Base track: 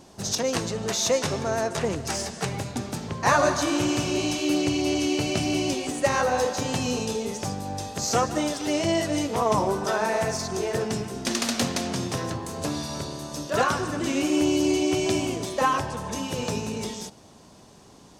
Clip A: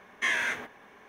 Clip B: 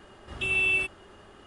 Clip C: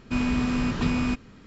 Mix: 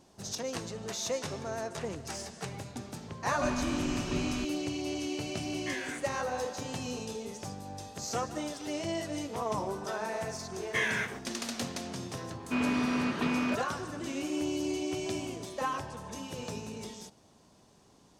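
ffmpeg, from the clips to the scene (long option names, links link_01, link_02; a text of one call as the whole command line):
ffmpeg -i bed.wav -i cue0.wav -i cue1.wav -i cue2.wav -filter_complex "[3:a]asplit=2[link_01][link_02];[1:a]asplit=2[link_03][link_04];[0:a]volume=-10.5dB[link_05];[link_02]highpass=260,lowpass=3600[link_06];[link_01]atrim=end=1.46,asetpts=PTS-STARTPTS,volume=-9.5dB,afade=type=in:duration=0.004:curve=hsin,afade=type=out:start_time=1.456:duration=0.004:curve=hsin,adelay=3300[link_07];[link_03]atrim=end=1.08,asetpts=PTS-STARTPTS,volume=-11.5dB,afade=type=in:duration=0.004:curve=hsin,afade=type=out:start_time=1.076:duration=0.004:curve=hsin,adelay=5440[link_08];[link_04]atrim=end=1.08,asetpts=PTS-STARTPTS,volume=-3dB,afade=type=in:duration=0.004:curve=hsin,afade=type=out:start_time=1.076:duration=0.004:curve=hsin,adelay=10520[link_09];[link_06]atrim=end=1.46,asetpts=PTS-STARTPTS,volume=-1dB,afade=type=in:duration=0.004:curve=hsin,afade=type=out:start_time=1.456:duration=0.004:curve=hsin,adelay=12400[link_10];[link_05][link_07][link_08][link_09][link_10]amix=inputs=5:normalize=0" out.wav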